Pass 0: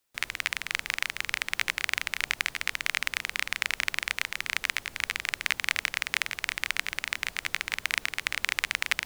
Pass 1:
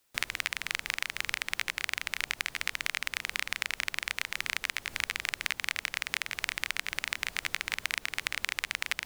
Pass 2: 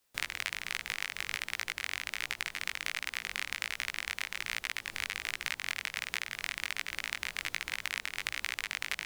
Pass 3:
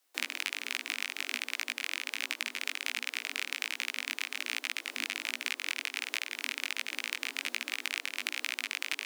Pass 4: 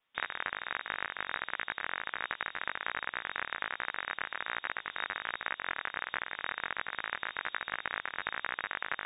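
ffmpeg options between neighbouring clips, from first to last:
-af "acompressor=threshold=-32dB:ratio=6,volume=5.5dB"
-af "flanger=delay=16.5:depth=5.2:speed=1.3"
-af "afreqshift=240,volume=1dB"
-af "lowpass=f=3.4k:t=q:w=0.5098,lowpass=f=3.4k:t=q:w=0.6013,lowpass=f=3.4k:t=q:w=0.9,lowpass=f=3.4k:t=q:w=2.563,afreqshift=-4000"

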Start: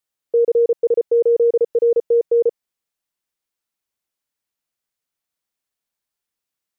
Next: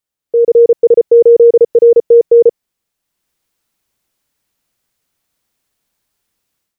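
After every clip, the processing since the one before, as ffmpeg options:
-af "lowshelf=f=340:g=6.5,dynaudnorm=f=300:g=3:m=13dB"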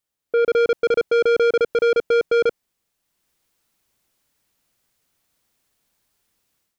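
-af "asoftclip=type=tanh:threshold=-15dB"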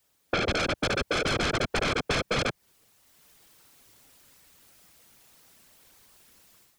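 -filter_complex "[0:a]afftfilt=real='hypot(re,im)*cos(2*PI*random(0))':imag='hypot(re,im)*sin(2*PI*random(1))':win_size=512:overlap=0.75,aeval=exprs='0.282*sin(PI/2*7.08*val(0)/0.282)':c=same,acrossover=split=150[a][b];[b]acompressor=threshold=-23dB:ratio=10[c];[a][c]amix=inputs=2:normalize=0,volume=-2dB"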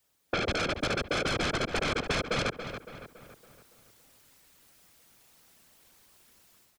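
-filter_complex "[0:a]asplit=2[a][b];[b]adelay=281,lowpass=f=3.3k:p=1,volume=-9dB,asplit=2[c][d];[d]adelay=281,lowpass=f=3.3k:p=1,volume=0.5,asplit=2[e][f];[f]adelay=281,lowpass=f=3.3k:p=1,volume=0.5,asplit=2[g][h];[h]adelay=281,lowpass=f=3.3k:p=1,volume=0.5,asplit=2[i][j];[j]adelay=281,lowpass=f=3.3k:p=1,volume=0.5,asplit=2[k][l];[l]adelay=281,lowpass=f=3.3k:p=1,volume=0.5[m];[a][c][e][g][i][k][m]amix=inputs=7:normalize=0,volume=-3dB"

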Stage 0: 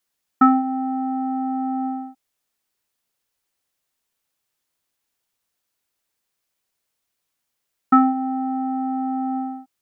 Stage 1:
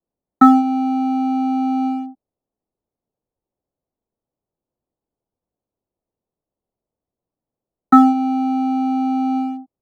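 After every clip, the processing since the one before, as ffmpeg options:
-filter_complex "[0:a]highshelf=f=2.1k:g=-7.5,acrossover=split=210|800[a][b][c];[c]aeval=exprs='sgn(val(0))*max(abs(val(0))-0.0075,0)':c=same[d];[a][b][d]amix=inputs=3:normalize=0,volume=6dB"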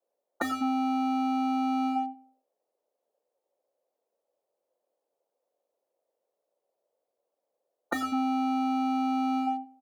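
-filter_complex "[0:a]highpass=f=540:t=q:w=4.2,asplit=2[a][b];[b]adelay=99,lowpass=f=1.3k:p=1,volume=-19dB,asplit=2[c][d];[d]adelay=99,lowpass=f=1.3k:p=1,volume=0.36,asplit=2[e][f];[f]adelay=99,lowpass=f=1.3k:p=1,volume=0.36[g];[a][c][e][g]amix=inputs=4:normalize=0,afftfilt=real='re*lt(hypot(re,im),0.708)':imag='im*lt(hypot(re,im),0.708)':win_size=1024:overlap=0.75"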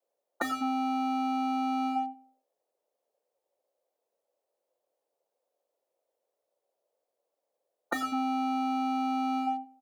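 -af "lowshelf=f=190:g=-9.5"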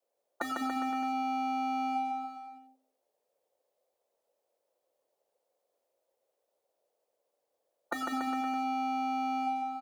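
-filter_complex "[0:a]acompressor=threshold=-31dB:ratio=6,asplit=2[a][b];[b]aecho=0:1:150|285|406.5|515.8|614.3:0.631|0.398|0.251|0.158|0.1[c];[a][c]amix=inputs=2:normalize=0"

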